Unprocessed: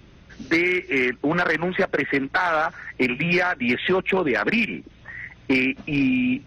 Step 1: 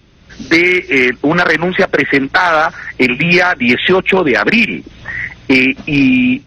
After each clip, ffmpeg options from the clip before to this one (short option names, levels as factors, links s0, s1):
-af "equalizer=f=4800:w=1:g=5,dynaudnorm=f=180:g=3:m=5.31"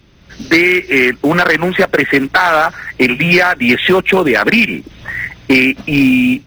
-af "acrusher=bits=7:mode=log:mix=0:aa=0.000001"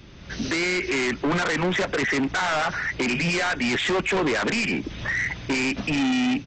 -af "aresample=16000,asoftclip=type=tanh:threshold=0.126,aresample=44100,alimiter=limit=0.0794:level=0:latency=1:release=39,volume=1.26"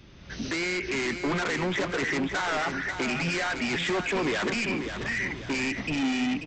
-af "aecho=1:1:538|1076|1614|2152|2690:0.398|0.163|0.0669|0.0274|0.0112,volume=0.562"